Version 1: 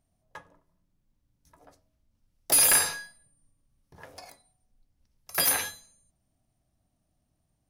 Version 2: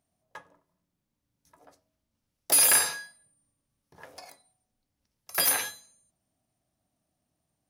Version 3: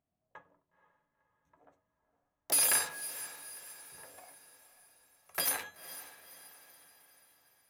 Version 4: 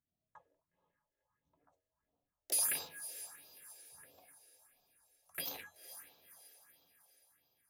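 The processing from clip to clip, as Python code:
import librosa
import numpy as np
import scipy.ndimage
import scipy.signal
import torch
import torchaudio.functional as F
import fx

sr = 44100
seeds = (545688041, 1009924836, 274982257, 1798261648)

y1 = fx.highpass(x, sr, hz=220.0, slope=6)
y2 = fx.wiener(y1, sr, points=9)
y2 = fx.echo_diffused(y2, sr, ms=491, feedback_pct=50, wet_db=-14.0)
y2 = y2 * librosa.db_to_amplitude(-6.5)
y3 = fx.phaser_stages(y2, sr, stages=4, low_hz=170.0, high_hz=1800.0, hz=1.5, feedback_pct=25)
y3 = y3 * librosa.db_to_amplitude(-5.5)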